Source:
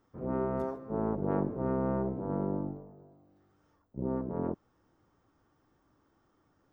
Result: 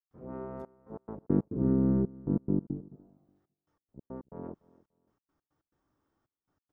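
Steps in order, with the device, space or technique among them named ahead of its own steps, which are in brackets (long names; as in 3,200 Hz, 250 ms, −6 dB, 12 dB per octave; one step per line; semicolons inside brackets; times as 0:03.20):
0:01.23–0:02.96: low shelf with overshoot 450 Hz +13.5 dB, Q 1.5
trance gate with a delay (gate pattern ".xxxxx..x.x.x" 139 BPM −60 dB; repeating echo 291 ms, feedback 24%, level −22.5 dB)
level −8.5 dB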